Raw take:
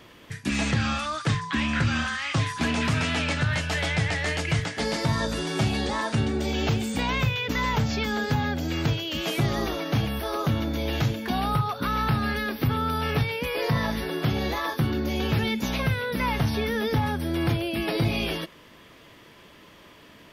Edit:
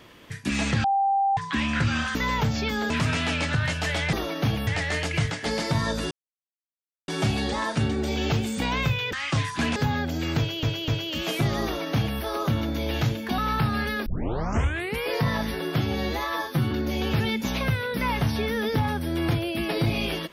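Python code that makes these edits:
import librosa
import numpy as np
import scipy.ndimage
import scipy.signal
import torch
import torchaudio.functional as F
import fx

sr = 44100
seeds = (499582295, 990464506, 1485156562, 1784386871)

y = fx.edit(x, sr, fx.bleep(start_s=0.84, length_s=0.53, hz=788.0, db=-19.0),
    fx.swap(start_s=2.15, length_s=0.63, other_s=7.5, other_length_s=0.75),
    fx.insert_silence(at_s=5.45, length_s=0.97),
    fx.repeat(start_s=8.87, length_s=0.25, count=3),
    fx.duplicate(start_s=9.63, length_s=0.54, to_s=4.01),
    fx.cut(start_s=11.37, length_s=0.5),
    fx.tape_start(start_s=12.55, length_s=0.97),
    fx.stretch_span(start_s=14.29, length_s=0.61, factor=1.5), tone=tone)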